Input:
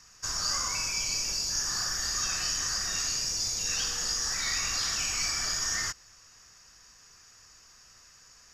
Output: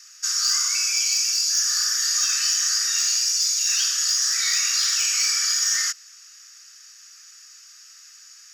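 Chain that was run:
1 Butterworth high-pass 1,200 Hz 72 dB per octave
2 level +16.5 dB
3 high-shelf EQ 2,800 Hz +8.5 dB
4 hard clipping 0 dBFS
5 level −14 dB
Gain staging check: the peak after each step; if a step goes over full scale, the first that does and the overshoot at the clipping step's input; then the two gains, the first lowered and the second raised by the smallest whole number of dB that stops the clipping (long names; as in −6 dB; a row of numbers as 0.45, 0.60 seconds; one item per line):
−17.5, −1.0, +6.0, 0.0, −14.0 dBFS
step 3, 6.0 dB
step 2 +10.5 dB, step 5 −8 dB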